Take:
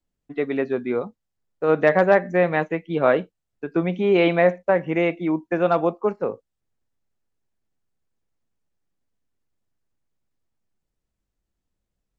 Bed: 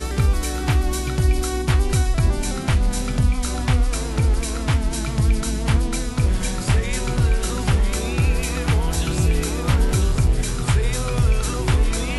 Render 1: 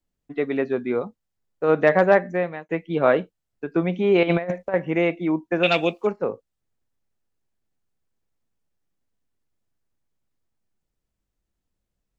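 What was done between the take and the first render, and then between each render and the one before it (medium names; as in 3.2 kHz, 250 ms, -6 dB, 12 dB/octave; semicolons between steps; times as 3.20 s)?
2.17–2.69 s: fade out linear; 4.23–4.74 s: compressor with a negative ratio -22 dBFS, ratio -0.5; 5.63–6.07 s: resonant high shelf 1.7 kHz +13.5 dB, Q 3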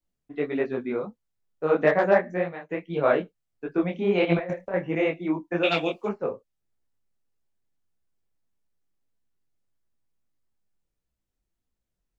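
detune thickener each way 56 cents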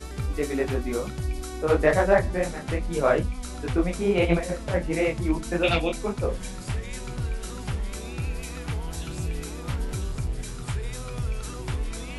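add bed -11.5 dB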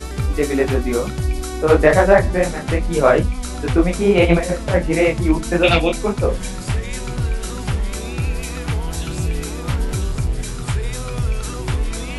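trim +8.5 dB; peak limiter -1 dBFS, peak gain reduction 2.5 dB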